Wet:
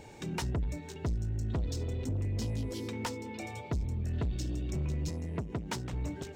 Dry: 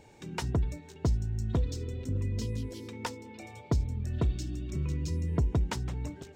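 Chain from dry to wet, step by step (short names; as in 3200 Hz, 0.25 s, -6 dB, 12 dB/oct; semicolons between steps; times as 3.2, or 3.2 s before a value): in parallel at -0.5 dB: compressor, threshold -36 dBFS, peak gain reduction 12 dB; on the sum: soft clip -28.5 dBFS, distortion -10 dB; 5.09–5.93 HPF 110 Hz 12 dB/oct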